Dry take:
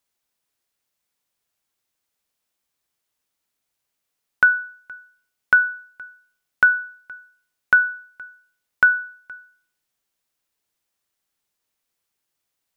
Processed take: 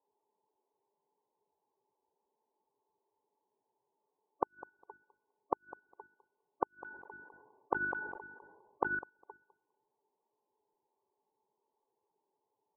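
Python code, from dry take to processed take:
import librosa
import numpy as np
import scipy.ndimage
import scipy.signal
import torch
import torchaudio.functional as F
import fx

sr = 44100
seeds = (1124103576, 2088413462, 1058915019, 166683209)

y = scipy.signal.sosfilt(scipy.signal.butter(12, 1100.0, 'lowpass', fs=sr, output='sos'), x)
y = fx.low_shelf(y, sr, hz=89.0, db=-9.0)
y = fx.hum_notches(y, sr, base_hz=50, count=7)
y = fx.level_steps(y, sr, step_db=9)
y = fx.small_body(y, sr, hz=(410.0, 870.0), ring_ms=50, db=15)
y = fx.spec_topn(y, sr, count=32)
y = fx.gate_flip(y, sr, shuts_db=-23.0, range_db=-37)
y = fx.echo_feedback(y, sr, ms=203, feedback_pct=16, wet_db=-17)
y = fx.sustainer(y, sr, db_per_s=40.0, at=(6.67, 8.99))
y = y * 10.0 ** (7.5 / 20.0)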